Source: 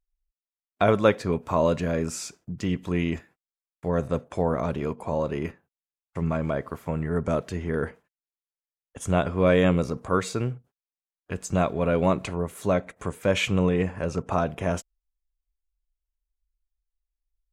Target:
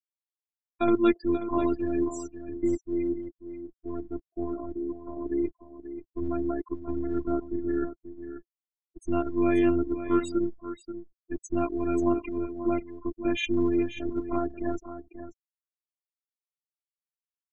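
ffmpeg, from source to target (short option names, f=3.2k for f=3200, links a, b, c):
-filter_complex "[0:a]asettb=1/sr,asplit=3[a][b][c];[a]atrim=end=2.764[d];[b]atrim=start=2.76:end=5.26,asetpts=PTS-STARTPTS,afade=t=in:d=0.004:c=qsin,afade=t=out:st=2.496:d=0.004:c=qsin,flanger=delay=7.6:depth=2.3:regen=-84:speed=1.2:shape=sinusoidal[e];[c]atrim=start=5.256[f];[d][e]acrossfade=d=0.004:c1=hsin:c2=qsin[g];[g][f]acrossfade=d=0.004:c1=qsin:c2=hsin,afftfilt=real='re*gte(hypot(re,im),0.0501)':imag='im*gte(hypot(re,im),0.0501)':win_size=1024:overlap=0.75,lowshelf=f=400:t=q:w=3:g=7,aecho=1:1:535:0.266,afftfilt=real='hypot(re,im)*cos(PI*b)':imag='0':win_size=512:overlap=0.75,adynamicequalizer=threshold=0.00447:dfrequency=3500:dqfactor=0.7:tfrequency=3500:tqfactor=0.7:attack=5:release=100:ratio=0.375:range=3.5:mode=boostabove:tftype=highshelf,volume=-3dB"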